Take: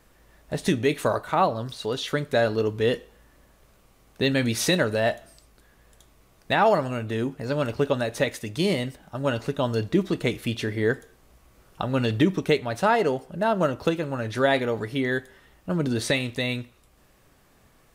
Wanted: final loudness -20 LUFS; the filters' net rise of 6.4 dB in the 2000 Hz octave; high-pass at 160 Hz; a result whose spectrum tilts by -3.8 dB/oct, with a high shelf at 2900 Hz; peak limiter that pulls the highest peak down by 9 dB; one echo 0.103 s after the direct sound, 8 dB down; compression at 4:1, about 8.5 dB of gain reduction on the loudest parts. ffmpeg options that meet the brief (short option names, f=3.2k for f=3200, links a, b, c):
-af "highpass=160,equalizer=f=2k:t=o:g=6.5,highshelf=f=2.9k:g=4,acompressor=threshold=-24dB:ratio=4,alimiter=limit=-18dB:level=0:latency=1,aecho=1:1:103:0.398,volume=10dB"